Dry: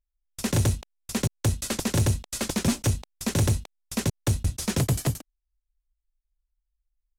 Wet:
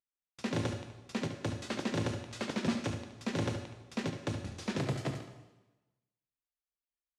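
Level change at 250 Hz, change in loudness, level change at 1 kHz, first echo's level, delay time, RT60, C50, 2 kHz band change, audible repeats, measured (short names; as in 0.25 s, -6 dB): -6.5 dB, -10.0 dB, -5.0 dB, -9.5 dB, 72 ms, 1.1 s, 5.5 dB, -5.0 dB, 1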